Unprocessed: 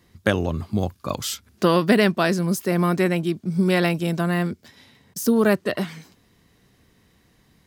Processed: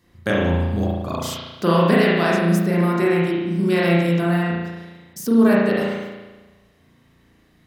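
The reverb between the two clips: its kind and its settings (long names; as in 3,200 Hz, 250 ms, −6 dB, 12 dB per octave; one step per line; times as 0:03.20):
spring reverb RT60 1.2 s, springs 35 ms, chirp 40 ms, DRR −5.5 dB
level −4 dB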